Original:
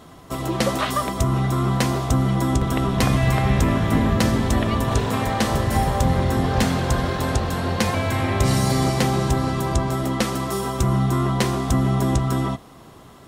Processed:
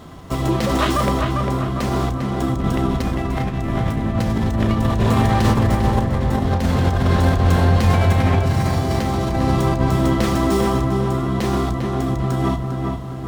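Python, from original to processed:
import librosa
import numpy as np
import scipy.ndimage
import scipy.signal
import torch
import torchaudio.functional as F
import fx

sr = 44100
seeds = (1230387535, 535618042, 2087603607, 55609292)

y = fx.low_shelf(x, sr, hz=160.0, db=7.5)
y = fx.over_compress(y, sr, threshold_db=-20.0, ratio=-1.0)
y = fx.doubler(y, sr, ms=33.0, db=-11)
y = fx.echo_filtered(y, sr, ms=400, feedback_pct=52, hz=2600.0, wet_db=-3.5)
y = fx.running_max(y, sr, window=3)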